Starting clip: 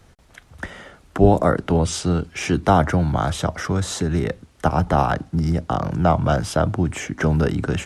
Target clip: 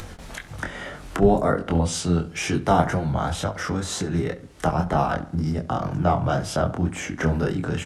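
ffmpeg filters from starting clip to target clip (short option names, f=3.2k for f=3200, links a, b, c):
-filter_complex "[0:a]flanger=delay=3.7:depth=3.3:regen=-59:speed=0.57:shape=sinusoidal,asettb=1/sr,asplit=3[a][b][c];[a]atrim=end=1.894[d];[b]atrim=start=1.89:end=2.99,asetpts=PTS-STARTPTS,afade=t=in:d=0.004:c=qsin,afade=t=out:st=1.096:d=0.004:c=qsin,highshelf=f=5.6k:g=4.5[e];[c]atrim=start=2.986[f];[d][e]acrossfade=d=0.004:c1=hsin:c2=qsin[g];[g][f]acrossfade=d=0.004:c1=qsin:c2=hsin,flanger=delay=20:depth=4.8:speed=2,acompressor=mode=upward:threshold=-26dB:ratio=2.5,asplit=2[h][i];[i]adelay=68,lowpass=f=2.5k:p=1,volume=-15dB,asplit=2[j][k];[k]adelay=68,lowpass=f=2.5k:p=1,volume=0.47,asplit=2[l][m];[m]adelay=68,lowpass=f=2.5k:p=1,volume=0.47,asplit=2[n][o];[o]adelay=68,lowpass=f=2.5k:p=1,volume=0.47[p];[j][l][n][p]amix=inputs=4:normalize=0[q];[h][q]amix=inputs=2:normalize=0,volume=3.5dB"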